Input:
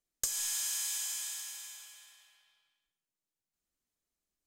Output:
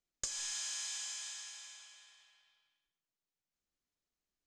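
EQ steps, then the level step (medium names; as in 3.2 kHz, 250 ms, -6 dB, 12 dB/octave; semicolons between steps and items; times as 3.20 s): low-pass 6.9 kHz 24 dB/octave; -2.0 dB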